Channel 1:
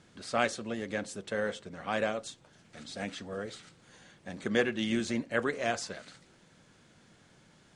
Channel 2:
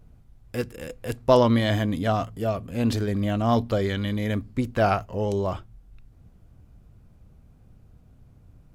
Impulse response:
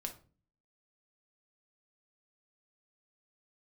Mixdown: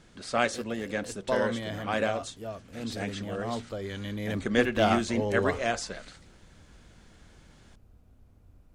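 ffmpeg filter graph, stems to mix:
-filter_complex "[0:a]volume=2.5dB[link_01];[1:a]equalizer=frequency=140:width_type=o:width=0.43:gain=-14,volume=-3dB,afade=type=in:start_time=3.77:duration=0.68:silence=0.375837[link_02];[link_01][link_02]amix=inputs=2:normalize=0"

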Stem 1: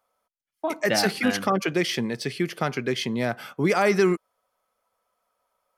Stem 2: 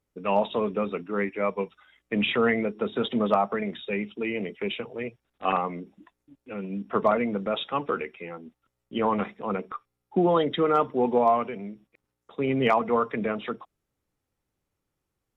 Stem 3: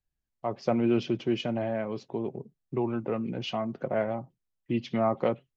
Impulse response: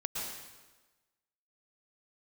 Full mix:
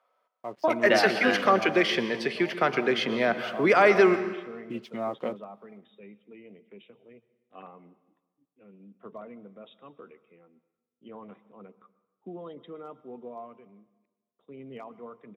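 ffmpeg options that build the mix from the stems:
-filter_complex "[0:a]acrossover=split=320 3800:gain=0.224 1 0.126[link_01][link_02][link_03];[link_01][link_02][link_03]amix=inputs=3:normalize=0,acontrast=33,volume=-3.5dB,asplit=2[link_04][link_05];[link_05]volume=-10.5dB[link_06];[1:a]equalizer=frequency=2000:width_type=o:width=2.3:gain=-7.5,adelay=2100,volume=-18.5dB,asplit=2[link_07][link_08];[link_08]volume=-19.5dB[link_09];[2:a]highpass=frequency=210:poles=1,aeval=exprs='sgn(val(0))*max(abs(val(0))-0.002,0)':channel_layout=same,volume=-4.5dB[link_10];[3:a]atrim=start_sample=2205[link_11];[link_06][link_09]amix=inputs=2:normalize=0[link_12];[link_12][link_11]afir=irnorm=-1:irlink=0[link_13];[link_04][link_07][link_10][link_13]amix=inputs=4:normalize=0,highpass=120,bandreject=frequency=840:width=12"

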